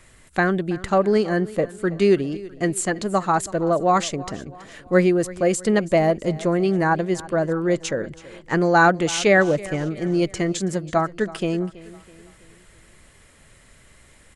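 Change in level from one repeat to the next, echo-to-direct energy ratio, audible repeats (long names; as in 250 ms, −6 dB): −6.5 dB, −18.0 dB, 3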